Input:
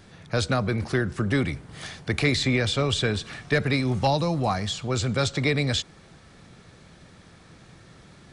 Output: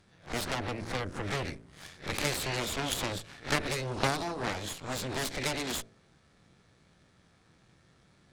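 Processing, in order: reverse spectral sustain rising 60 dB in 0.32 s; Chebyshev shaper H 3 -8 dB, 8 -22 dB, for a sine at -9.5 dBFS; de-hum 55.68 Hz, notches 12

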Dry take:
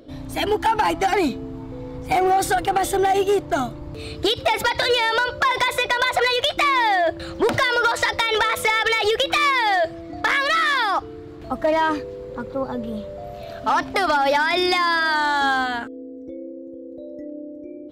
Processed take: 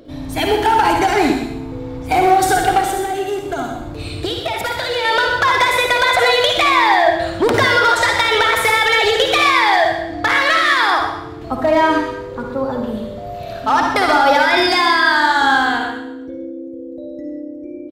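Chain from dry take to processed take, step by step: 2.80–5.05 s: compression 4:1, threshold -25 dBFS, peak gain reduction 8.5 dB; delay 126 ms -11 dB; reverberation RT60 0.80 s, pre-delay 52 ms, DRR 2 dB; trim +3.5 dB

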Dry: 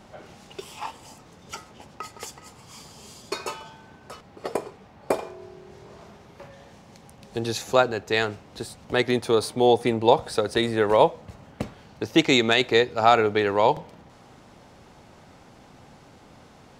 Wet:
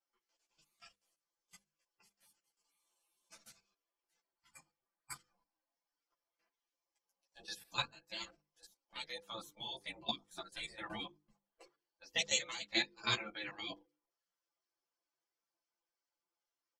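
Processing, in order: expander on every frequency bin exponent 2; Bessel low-pass 6.4 kHz, order 2; spectral gate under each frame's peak -25 dB weak; comb 5.9 ms, depth 82%; level held to a coarse grid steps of 13 dB; hum notches 50/100/150/200/250/300/350/400/450/500 Hz; three-phase chorus; trim +11.5 dB

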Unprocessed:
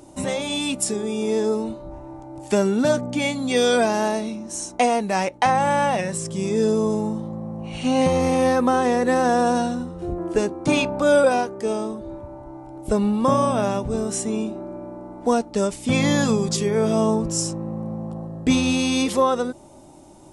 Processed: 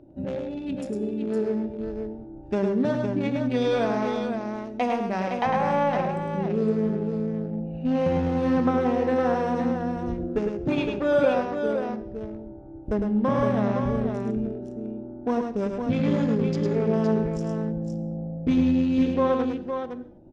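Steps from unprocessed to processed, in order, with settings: local Wiener filter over 41 samples; treble shelf 6.8 kHz +12 dB; in parallel at -3 dB: peak limiter -14.5 dBFS, peak gain reduction 9.5 dB; on the sum: distance through air 280 m; on a send: multi-tap echo 105/512 ms -5/-6 dB; on the sum: gated-style reverb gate 270 ms falling, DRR 12 dB; trim -7.5 dB

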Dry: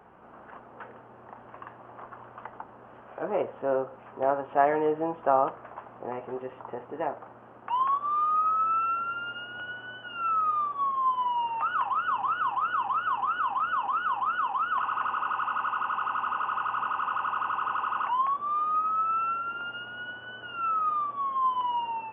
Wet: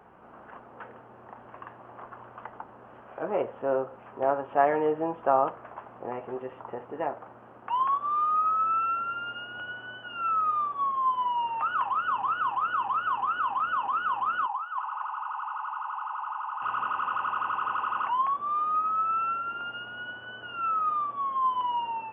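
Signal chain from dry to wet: 14.46–16.62 s: ladder high-pass 810 Hz, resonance 75%

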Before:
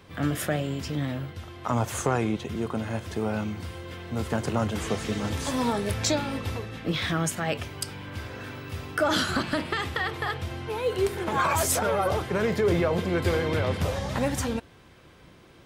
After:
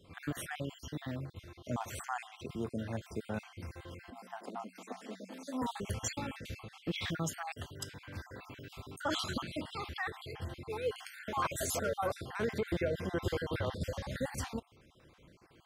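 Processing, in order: random holes in the spectrogram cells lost 46%; 4.10–5.62 s: rippled Chebyshev high-pass 180 Hz, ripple 9 dB; trim -7.5 dB

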